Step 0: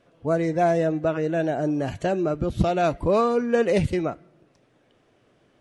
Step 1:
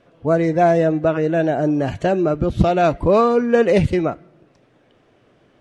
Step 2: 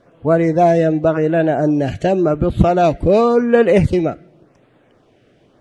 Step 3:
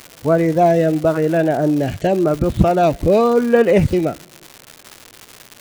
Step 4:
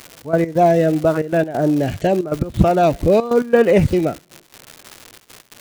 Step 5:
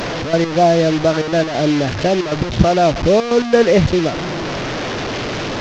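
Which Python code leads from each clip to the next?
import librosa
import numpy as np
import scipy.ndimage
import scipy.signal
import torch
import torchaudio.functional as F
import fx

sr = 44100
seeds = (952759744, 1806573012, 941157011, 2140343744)

y1 = fx.high_shelf(x, sr, hz=7100.0, db=-10.5)
y1 = y1 * 10.0 ** (6.0 / 20.0)
y2 = fx.filter_lfo_notch(y1, sr, shape='sine', hz=0.9, low_hz=970.0, high_hz=6000.0, q=1.4)
y2 = y2 * 10.0 ** (3.0 / 20.0)
y3 = fx.dmg_crackle(y2, sr, seeds[0], per_s=280.0, level_db=-23.0)
y3 = y3 * 10.0 ** (-1.0 / 20.0)
y4 = fx.step_gate(y3, sr, bpm=136, pattern='xx.x.xxxx', floor_db=-12.0, edge_ms=4.5)
y5 = fx.delta_mod(y4, sr, bps=32000, step_db=-17.5)
y5 = y5 * 10.0 ** (1.0 / 20.0)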